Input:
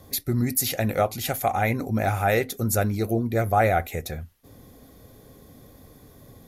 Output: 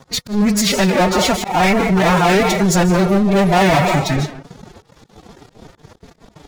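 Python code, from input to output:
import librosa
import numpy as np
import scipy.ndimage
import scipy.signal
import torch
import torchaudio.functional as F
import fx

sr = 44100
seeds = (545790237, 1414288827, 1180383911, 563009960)

y = scipy.signal.sosfilt(scipy.signal.butter(4, 7100.0, 'lowpass', fs=sr, output='sos'), x)
y = fx.low_shelf(y, sr, hz=62.0, db=2.5)
y = fx.rev_freeverb(y, sr, rt60_s=0.68, hf_ratio=0.5, predelay_ms=110, drr_db=9.5)
y = fx.leveller(y, sr, passes=5)
y = fx.pitch_keep_formants(y, sr, semitones=9.5)
y = fx.auto_swell(y, sr, attack_ms=131.0)
y = F.gain(torch.from_numpy(y), -1.5).numpy()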